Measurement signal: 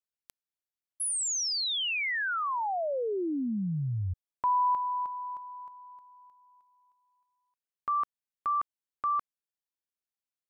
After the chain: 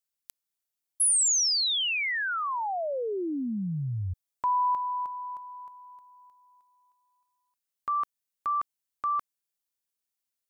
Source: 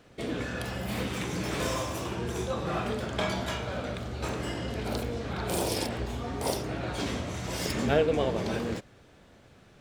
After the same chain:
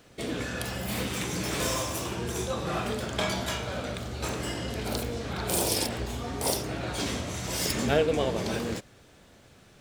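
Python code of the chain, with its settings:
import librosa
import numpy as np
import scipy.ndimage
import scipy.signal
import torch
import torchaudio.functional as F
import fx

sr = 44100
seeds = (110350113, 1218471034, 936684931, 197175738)

y = fx.high_shelf(x, sr, hz=4500.0, db=9.5)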